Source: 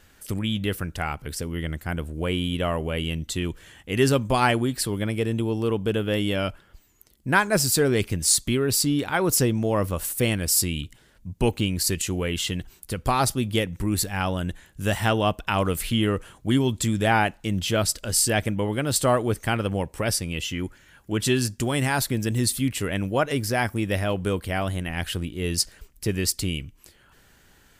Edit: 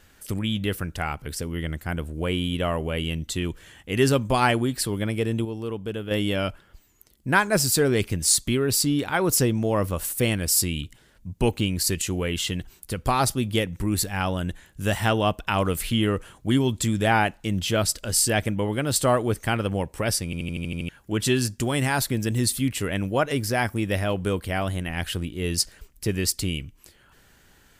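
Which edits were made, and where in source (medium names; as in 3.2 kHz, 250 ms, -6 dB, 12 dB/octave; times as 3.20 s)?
5.45–6.11 s: gain -6.5 dB
20.25 s: stutter in place 0.08 s, 8 plays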